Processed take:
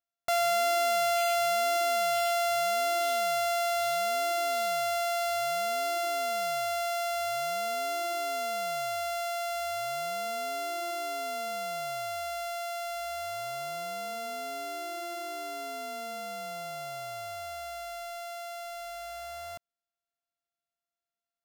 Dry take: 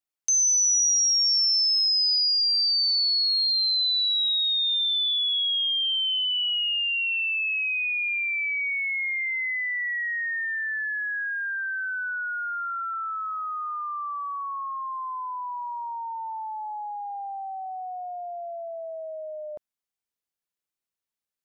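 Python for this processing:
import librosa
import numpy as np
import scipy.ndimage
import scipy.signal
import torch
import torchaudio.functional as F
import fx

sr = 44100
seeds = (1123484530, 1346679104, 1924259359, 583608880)

y = np.r_[np.sort(x[:len(x) // 64 * 64].reshape(-1, 64), axis=1).ravel(), x[len(x) // 64 * 64:]]
y = y * librosa.db_to_amplitude(-5.0)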